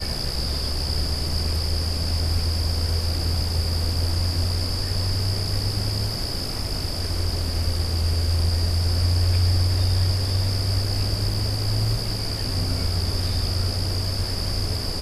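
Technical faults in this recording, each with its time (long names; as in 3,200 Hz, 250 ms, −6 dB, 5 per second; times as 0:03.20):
0:11.34: drop-out 4.3 ms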